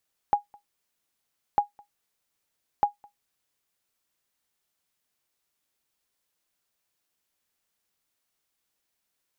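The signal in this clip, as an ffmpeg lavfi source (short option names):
-f lavfi -i "aevalsrc='0.251*(sin(2*PI*822*mod(t,1.25))*exp(-6.91*mod(t,1.25)/0.13)+0.0355*sin(2*PI*822*max(mod(t,1.25)-0.21,0))*exp(-6.91*max(mod(t,1.25)-0.21,0)/0.13))':d=3.75:s=44100"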